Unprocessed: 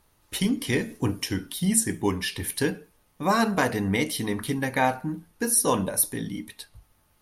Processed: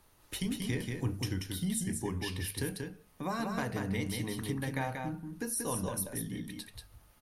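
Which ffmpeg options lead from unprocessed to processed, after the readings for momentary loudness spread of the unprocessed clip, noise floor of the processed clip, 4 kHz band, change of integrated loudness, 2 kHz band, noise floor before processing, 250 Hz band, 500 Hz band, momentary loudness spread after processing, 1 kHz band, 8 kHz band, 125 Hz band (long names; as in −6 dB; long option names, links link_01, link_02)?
13 LU, −63 dBFS, −9.0 dB, −10.0 dB, −11.0 dB, −65 dBFS, −9.0 dB, −11.5 dB, 8 LU, −12.5 dB, −11.5 dB, −4.5 dB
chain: -filter_complex "[0:a]bandreject=frequency=50:width_type=h:width=6,bandreject=frequency=100:width_type=h:width=6,bandreject=frequency=150:width_type=h:width=6,bandreject=frequency=200:width_type=h:width=6,acrossover=split=120[link_01][link_02];[link_02]acompressor=threshold=-45dB:ratio=2[link_03];[link_01][link_03]amix=inputs=2:normalize=0,aecho=1:1:185:0.596"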